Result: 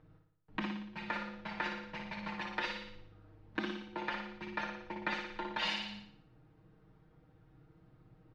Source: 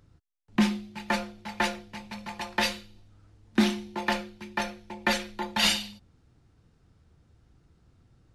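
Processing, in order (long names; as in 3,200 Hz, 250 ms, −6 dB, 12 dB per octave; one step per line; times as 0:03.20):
high-frequency loss of the air 240 metres
downward compressor 3 to 1, threshold −40 dBFS, peak gain reduction 16.5 dB
low-shelf EQ 200 Hz −8 dB
comb filter 6.4 ms, depth 91%
flutter between parallel walls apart 10 metres, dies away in 0.68 s
one half of a high-frequency compander decoder only
level +1 dB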